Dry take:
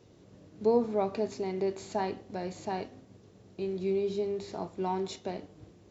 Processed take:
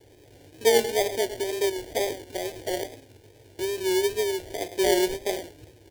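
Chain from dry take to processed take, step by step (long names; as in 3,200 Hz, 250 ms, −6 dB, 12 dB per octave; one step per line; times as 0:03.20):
0:04.75–0:05.39: comb filter 5.5 ms, depth 85%
slap from a distant wall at 19 metres, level −12 dB
decimation without filtering 33×
tape wow and flutter 81 cents
phaser with its sweep stopped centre 470 Hz, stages 4
level +7 dB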